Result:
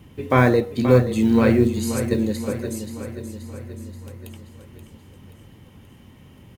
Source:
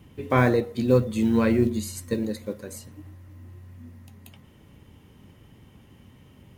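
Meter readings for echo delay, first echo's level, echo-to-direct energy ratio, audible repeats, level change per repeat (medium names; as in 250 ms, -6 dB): 529 ms, -10.0 dB, -8.5 dB, 5, -5.0 dB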